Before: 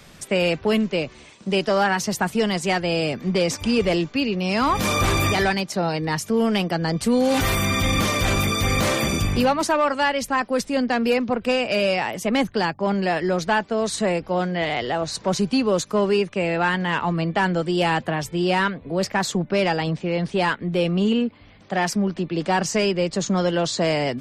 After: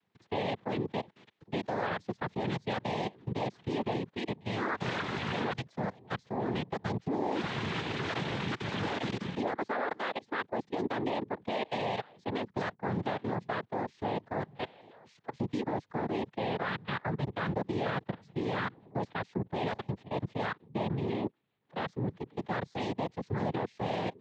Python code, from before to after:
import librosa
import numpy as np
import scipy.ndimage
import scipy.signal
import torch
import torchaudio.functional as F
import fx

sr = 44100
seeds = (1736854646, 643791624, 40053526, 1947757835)

y = fx.low_shelf(x, sr, hz=460.0, db=-10.0, at=(14.9, 15.34))
y = fx.level_steps(y, sr, step_db=23)
y = fx.noise_vocoder(y, sr, seeds[0], bands=6)
y = fx.air_absorb(y, sr, metres=210.0)
y = y * librosa.db_to_amplitude(-8.0)